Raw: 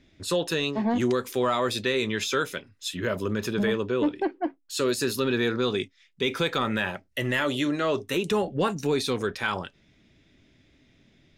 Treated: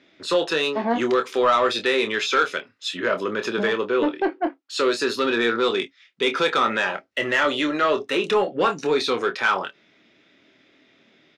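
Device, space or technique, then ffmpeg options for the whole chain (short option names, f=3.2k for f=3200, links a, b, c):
intercom: -filter_complex "[0:a]highpass=340,lowpass=4.5k,equalizer=f=1.3k:t=o:w=0.31:g=5,asoftclip=type=tanh:threshold=-18dB,asplit=2[a][b];[b]adelay=26,volume=-8dB[c];[a][c]amix=inputs=2:normalize=0,volume=6.5dB"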